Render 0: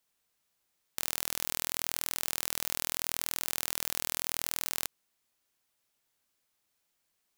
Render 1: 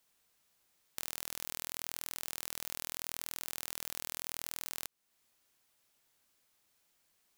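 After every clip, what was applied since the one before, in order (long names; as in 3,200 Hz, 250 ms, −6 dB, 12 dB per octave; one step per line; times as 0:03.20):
downward compressor 2 to 1, threshold −46 dBFS, peak gain reduction 11.5 dB
level +4 dB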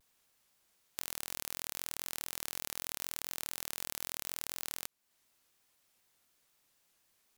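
pitch modulation by a square or saw wave saw down 4 Hz, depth 250 cents
level +1 dB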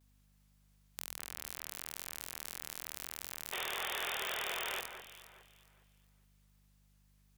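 mains hum 50 Hz, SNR 20 dB
sound drawn into the spectrogram noise, 0:03.52–0:04.81, 350–3,700 Hz −36 dBFS
delay that swaps between a low-pass and a high-pass 206 ms, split 2,400 Hz, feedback 53%, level −8 dB
level −4 dB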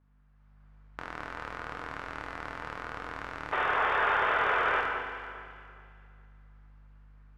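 automatic gain control gain up to 8 dB
low-pass with resonance 1,400 Hz, resonance Q 2
feedback delay network reverb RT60 2 s, low-frequency decay 0.95×, high-frequency decay 1×, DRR 3 dB
level +2 dB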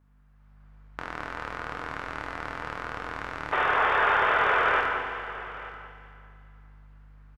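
single-tap delay 887 ms −17 dB
level +4 dB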